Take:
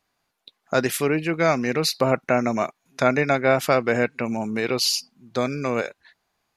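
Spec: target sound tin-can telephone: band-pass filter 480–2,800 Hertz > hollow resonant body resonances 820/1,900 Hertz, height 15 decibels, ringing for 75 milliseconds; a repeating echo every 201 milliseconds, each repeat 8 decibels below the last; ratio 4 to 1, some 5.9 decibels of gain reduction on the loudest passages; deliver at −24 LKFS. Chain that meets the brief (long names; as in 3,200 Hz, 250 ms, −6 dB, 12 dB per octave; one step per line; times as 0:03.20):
downward compressor 4 to 1, threshold −21 dBFS
band-pass filter 480–2,800 Hz
repeating echo 201 ms, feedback 40%, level −8 dB
hollow resonant body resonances 820/1,900 Hz, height 15 dB, ringing for 75 ms
level +4 dB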